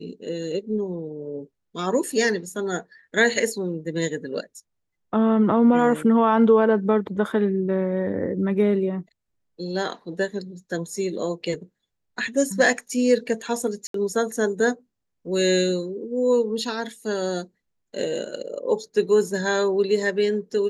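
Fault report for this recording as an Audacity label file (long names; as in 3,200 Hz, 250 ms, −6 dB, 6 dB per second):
13.870000	13.940000	drop-out 73 ms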